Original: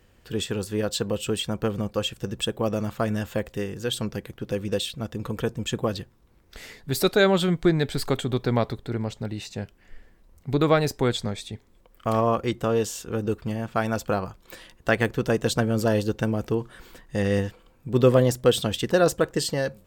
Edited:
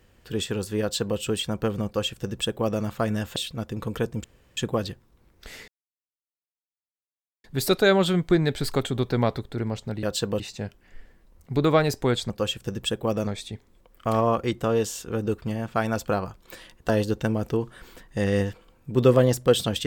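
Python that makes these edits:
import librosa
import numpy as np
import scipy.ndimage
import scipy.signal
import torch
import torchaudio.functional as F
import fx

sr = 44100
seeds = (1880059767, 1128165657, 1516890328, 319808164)

y = fx.edit(x, sr, fx.duplicate(start_s=0.81, length_s=0.37, to_s=9.37),
    fx.duplicate(start_s=1.86, length_s=0.97, to_s=11.27),
    fx.cut(start_s=3.36, length_s=1.43),
    fx.insert_room_tone(at_s=5.67, length_s=0.33),
    fx.insert_silence(at_s=6.78, length_s=1.76),
    fx.cut(start_s=14.89, length_s=0.98), tone=tone)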